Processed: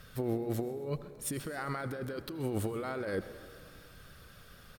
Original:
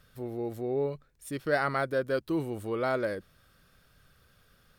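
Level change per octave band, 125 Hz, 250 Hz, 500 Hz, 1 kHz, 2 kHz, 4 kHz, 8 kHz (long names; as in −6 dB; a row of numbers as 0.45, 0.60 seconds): +1.0, −2.5, −6.5, −7.5, −8.5, −2.5, +8.0 decibels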